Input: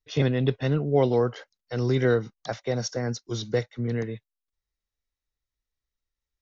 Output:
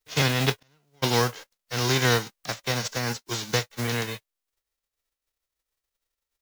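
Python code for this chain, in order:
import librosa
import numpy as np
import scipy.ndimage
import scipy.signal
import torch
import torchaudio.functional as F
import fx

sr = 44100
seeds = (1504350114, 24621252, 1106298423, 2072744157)

y = fx.envelope_flatten(x, sr, power=0.3)
y = fx.gate_flip(y, sr, shuts_db=-24.0, range_db=-40, at=(0.58, 1.02), fade=0.02)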